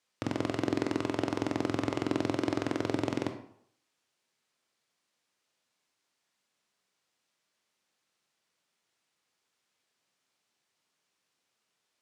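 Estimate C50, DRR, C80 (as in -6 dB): 8.5 dB, 5.5 dB, 12.0 dB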